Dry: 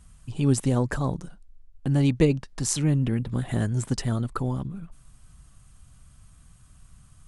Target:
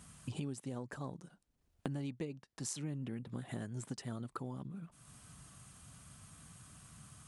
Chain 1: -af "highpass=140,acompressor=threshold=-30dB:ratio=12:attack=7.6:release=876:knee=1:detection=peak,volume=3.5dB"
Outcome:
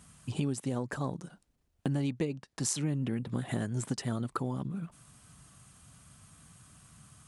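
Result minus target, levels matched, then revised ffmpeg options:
downward compressor: peak gain reduction −9 dB
-af "highpass=140,acompressor=threshold=-40dB:ratio=12:attack=7.6:release=876:knee=1:detection=peak,volume=3.5dB"

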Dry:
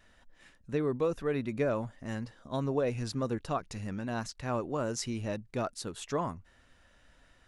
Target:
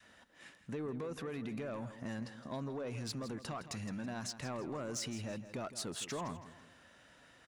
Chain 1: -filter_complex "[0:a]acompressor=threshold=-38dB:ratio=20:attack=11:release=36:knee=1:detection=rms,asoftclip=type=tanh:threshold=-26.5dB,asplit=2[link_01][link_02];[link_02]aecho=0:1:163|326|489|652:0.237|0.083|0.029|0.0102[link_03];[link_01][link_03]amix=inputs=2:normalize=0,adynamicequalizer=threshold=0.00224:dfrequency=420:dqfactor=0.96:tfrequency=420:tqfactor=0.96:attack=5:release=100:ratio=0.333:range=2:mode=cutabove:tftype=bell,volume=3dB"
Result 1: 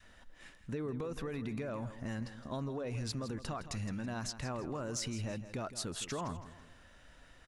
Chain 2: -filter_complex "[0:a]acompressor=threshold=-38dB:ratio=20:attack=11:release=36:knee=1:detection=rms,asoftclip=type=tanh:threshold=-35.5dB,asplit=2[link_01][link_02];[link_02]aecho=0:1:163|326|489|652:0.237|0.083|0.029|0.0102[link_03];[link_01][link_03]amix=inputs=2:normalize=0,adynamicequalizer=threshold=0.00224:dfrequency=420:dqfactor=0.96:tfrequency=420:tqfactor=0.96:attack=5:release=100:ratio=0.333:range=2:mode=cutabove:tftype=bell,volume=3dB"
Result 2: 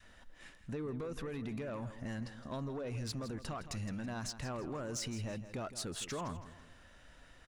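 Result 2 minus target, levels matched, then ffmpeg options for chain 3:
125 Hz band +2.5 dB
-filter_complex "[0:a]acompressor=threshold=-38dB:ratio=20:attack=11:release=36:knee=1:detection=rms,highpass=130,asoftclip=type=tanh:threshold=-35.5dB,asplit=2[link_01][link_02];[link_02]aecho=0:1:163|326|489|652:0.237|0.083|0.029|0.0102[link_03];[link_01][link_03]amix=inputs=2:normalize=0,adynamicequalizer=threshold=0.00224:dfrequency=420:dqfactor=0.96:tfrequency=420:tqfactor=0.96:attack=5:release=100:ratio=0.333:range=2:mode=cutabove:tftype=bell,volume=3dB"

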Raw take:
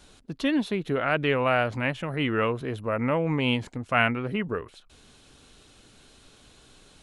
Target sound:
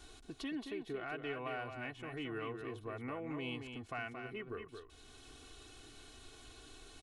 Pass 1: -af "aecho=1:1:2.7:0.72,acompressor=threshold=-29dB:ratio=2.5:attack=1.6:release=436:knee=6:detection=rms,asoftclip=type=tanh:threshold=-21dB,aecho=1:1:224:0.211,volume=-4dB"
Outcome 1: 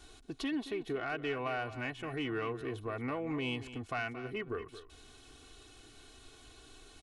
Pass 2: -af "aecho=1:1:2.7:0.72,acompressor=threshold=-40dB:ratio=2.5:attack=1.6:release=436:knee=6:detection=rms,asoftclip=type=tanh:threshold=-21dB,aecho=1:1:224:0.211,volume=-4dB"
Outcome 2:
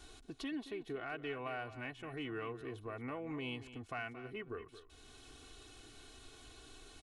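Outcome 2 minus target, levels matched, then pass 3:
echo-to-direct −6.5 dB
-af "aecho=1:1:2.7:0.72,acompressor=threshold=-40dB:ratio=2.5:attack=1.6:release=436:knee=6:detection=rms,asoftclip=type=tanh:threshold=-21dB,aecho=1:1:224:0.447,volume=-4dB"

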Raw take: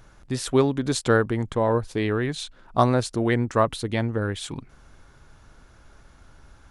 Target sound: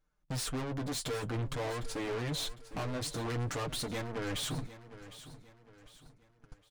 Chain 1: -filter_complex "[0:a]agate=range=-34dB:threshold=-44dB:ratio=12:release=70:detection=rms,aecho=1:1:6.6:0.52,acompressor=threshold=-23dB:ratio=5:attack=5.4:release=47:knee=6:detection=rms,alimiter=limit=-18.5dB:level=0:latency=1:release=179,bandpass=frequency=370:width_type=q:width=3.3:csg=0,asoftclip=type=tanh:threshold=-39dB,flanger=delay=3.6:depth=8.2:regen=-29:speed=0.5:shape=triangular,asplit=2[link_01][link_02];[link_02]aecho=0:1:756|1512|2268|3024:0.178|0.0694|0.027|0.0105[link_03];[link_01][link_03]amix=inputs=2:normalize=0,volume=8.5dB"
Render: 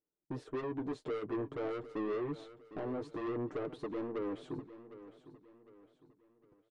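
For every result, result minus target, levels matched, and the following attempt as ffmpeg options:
downward compressor: peak gain reduction +11 dB; 500 Hz band +4.0 dB
-filter_complex "[0:a]agate=range=-34dB:threshold=-44dB:ratio=12:release=70:detection=rms,aecho=1:1:6.6:0.52,alimiter=limit=-18.5dB:level=0:latency=1:release=179,bandpass=frequency=370:width_type=q:width=3.3:csg=0,asoftclip=type=tanh:threshold=-39dB,flanger=delay=3.6:depth=8.2:regen=-29:speed=0.5:shape=triangular,asplit=2[link_01][link_02];[link_02]aecho=0:1:756|1512|2268|3024:0.178|0.0694|0.027|0.0105[link_03];[link_01][link_03]amix=inputs=2:normalize=0,volume=8.5dB"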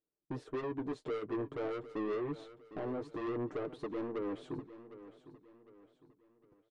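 500 Hz band +4.5 dB
-filter_complex "[0:a]agate=range=-34dB:threshold=-44dB:ratio=12:release=70:detection=rms,aecho=1:1:6.6:0.52,alimiter=limit=-18.5dB:level=0:latency=1:release=179,asoftclip=type=tanh:threshold=-39dB,flanger=delay=3.6:depth=8.2:regen=-29:speed=0.5:shape=triangular,asplit=2[link_01][link_02];[link_02]aecho=0:1:756|1512|2268|3024:0.178|0.0694|0.027|0.0105[link_03];[link_01][link_03]amix=inputs=2:normalize=0,volume=8.5dB"

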